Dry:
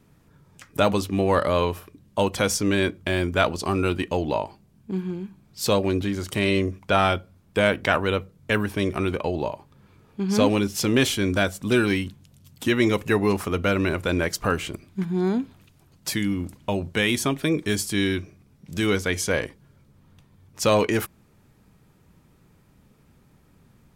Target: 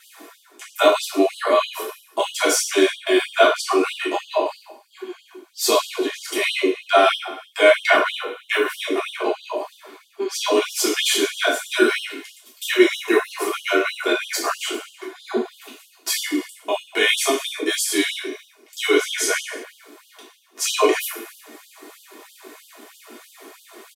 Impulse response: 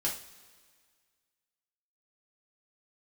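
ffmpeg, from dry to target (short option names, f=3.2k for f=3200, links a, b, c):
-filter_complex "[0:a]asplit=2[a][b];[b]acompressor=threshold=-32dB:ratio=6,volume=-2.5dB[c];[a][c]amix=inputs=2:normalize=0,bandreject=f=50:t=h:w=6,bandreject=f=100:t=h:w=6,bandreject=f=150:t=h:w=6,bandreject=f=200:t=h:w=6,bandreject=f=250:t=h:w=6,areverse,acompressor=mode=upward:threshold=-27dB:ratio=2.5,areverse,aecho=1:1:2.8:0.68[d];[1:a]atrim=start_sample=2205,afade=t=out:st=0.32:d=0.01,atrim=end_sample=14553,asetrate=31311,aresample=44100[e];[d][e]afir=irnorm=-1:irlink=0,afftfilt=real='re*gte(b*sr/1024,220*pow(2900/220,0.5+0.5*sin(2*PI*3.1*pts/sr)))':imag='im*gte(b*sr/1024,220*pow(2900/220,0.5+0.5*sin(2*PI*3.1*pts/sr)))':win_size=1024:overlap=0.75,volume=-4dB"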